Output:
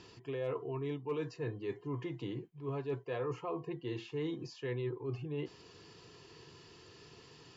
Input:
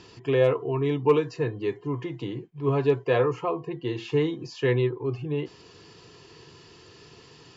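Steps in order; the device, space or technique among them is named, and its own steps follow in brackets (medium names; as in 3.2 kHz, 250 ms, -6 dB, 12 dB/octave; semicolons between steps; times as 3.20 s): compression on the reversed sound (reverse; compression 5:1, threshold -29 dBFS, peak gain reduction 13.5 dB; reverse); trim -6 dB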